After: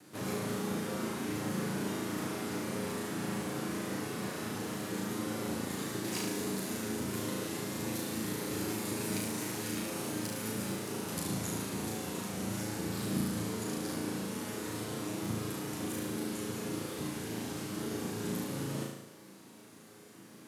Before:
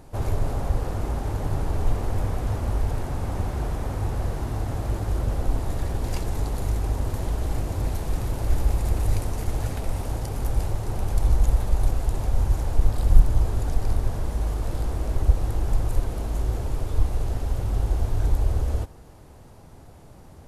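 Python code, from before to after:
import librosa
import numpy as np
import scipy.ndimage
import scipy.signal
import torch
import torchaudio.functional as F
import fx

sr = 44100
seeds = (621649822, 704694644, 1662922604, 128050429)

p1 = fx.lower_of_two(x, sr, delay_ms=9.5)
p2 = scipy.signal.sosfilt(scipy.signal.butter(4, 190.0, 'highpass', fs=sr, output='sos'), p1)
p3 = fx.peak_eq(p2, sr, hz=720.0, db=-13.0, octaves=1.2)
y = p3 + fx.room_flutter(p3, sr, wall_m=6.2, rt60_s=0.83, dry=0)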